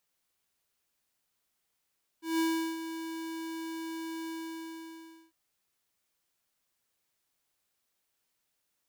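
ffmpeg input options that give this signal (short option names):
-f lavfi -i "aevalsrc='0.0422*(2*lt(mod(326*t,1),0.5)-1)':d=3.1:s=44100,afade=t=in:d=0.17,afade=t=out:st=0.17:d=0.375:silence=0.282,afade=t=out:st=2.07:d=1.03"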